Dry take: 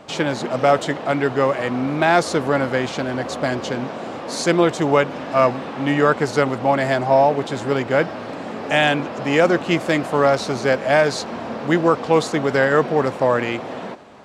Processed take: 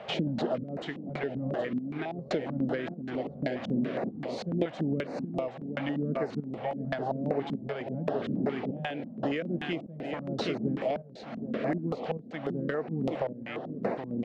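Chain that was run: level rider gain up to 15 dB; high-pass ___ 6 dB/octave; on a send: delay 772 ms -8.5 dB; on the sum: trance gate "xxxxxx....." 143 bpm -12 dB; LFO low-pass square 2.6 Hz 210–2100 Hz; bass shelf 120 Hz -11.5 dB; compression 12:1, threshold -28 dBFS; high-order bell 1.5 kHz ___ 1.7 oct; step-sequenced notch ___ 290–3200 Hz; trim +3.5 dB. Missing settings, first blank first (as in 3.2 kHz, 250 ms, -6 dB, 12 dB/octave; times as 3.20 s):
84 Hz, -10 dB, 7.3 Hz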